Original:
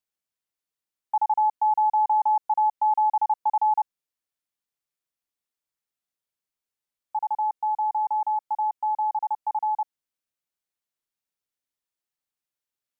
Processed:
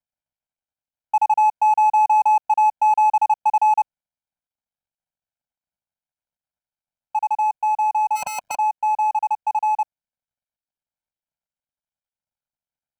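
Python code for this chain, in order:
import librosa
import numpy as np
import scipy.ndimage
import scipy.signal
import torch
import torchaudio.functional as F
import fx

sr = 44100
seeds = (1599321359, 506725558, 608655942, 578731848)

y = scipy.signal.medfilt(x, 25)
y = y + 0.99 * np.pad(y, (int(1.3 * sr / 1000.0), 0))[:len(y)]
y = fx.spectral_comp(y, sr, ratio=4.0, at=(8.15, 8.55), fade=0.02)
y = F.gain(torch.from_numpy(y), 1.5).numpy()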